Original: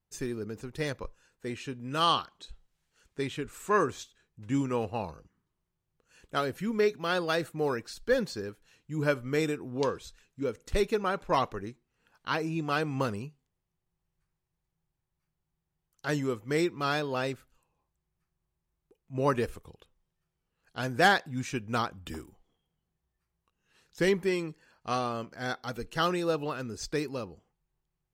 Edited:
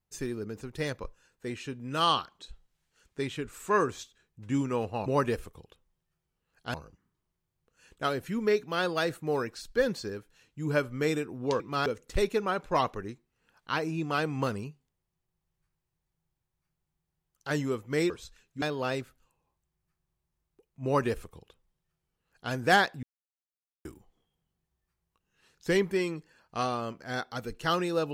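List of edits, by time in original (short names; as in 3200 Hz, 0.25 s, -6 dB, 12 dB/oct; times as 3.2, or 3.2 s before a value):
9.92–10.44 swap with 16.68–16.94
19.16–20.84 copy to 5.06
21.35–22.17 mute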